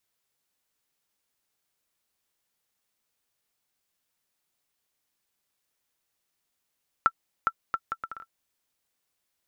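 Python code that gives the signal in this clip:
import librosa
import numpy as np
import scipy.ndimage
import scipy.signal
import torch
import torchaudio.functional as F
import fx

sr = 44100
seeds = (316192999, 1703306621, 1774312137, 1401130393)

y = fx.bouncing_ball(sr, first_gap_s=0.41, ratio=0.66, hz=1340.0, decay_ms=55.0, level_db=-8.5)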